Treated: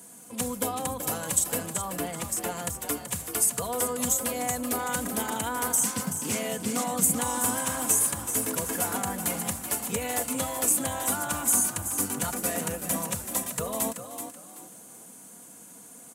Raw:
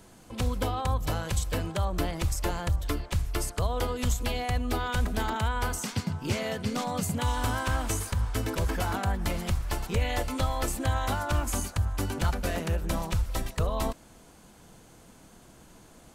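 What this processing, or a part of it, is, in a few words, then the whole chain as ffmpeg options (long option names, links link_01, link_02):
budget condenser microphone: -filter_complex "[0:a]equalizer=frequency=13000:width_type=o:width=2.8:gain=3,aecho=1:1:4.2:0.56,asettb=1/sr,asplit=3[link_01][link_02][link_03];[link_01]atrim=end=1.664[link_04];[link_02]atrim=start=1.66:end=2.57,asetpts=PTS-STARTPTS,afade=type=in:duration=0.004:curve=qsin,afade=type=out:start_time=0.906:duration=0.004:curve=qsin,bass=frequency=250:gain=-1,treble=frequency=4000:gain=-6[link_05];[link_03]atrim=start=2.566[link_06];[link_04][link_05]acrossfade=duration=0.004:curve1=hsin:curve2=qsin[link_07];[link_07][link_06]acrossfade=duration=0.004:curve1=qsin:curve2=hsin,highpass=frequency=110:width=0.5412,highpass=frequency=110:width=1.3066,highshelf=frequency=6300:width_type=q:width=1.5:gain=10.5,asplit=4[link_08][link_09][link_10][link_11];[link_09]adelay=380,afreqshift=41,volume=-9dB[link_12];[link_10]adelay=760,afreqshift=82,volume=-19.5dB[link_13];[link_11]adelay=1140,afreqshift=123,volume=-29.9dB[link_14];[link_08][link_12][link_13][link_14]amix=inputs=4:normalize=0,volume=-2dB"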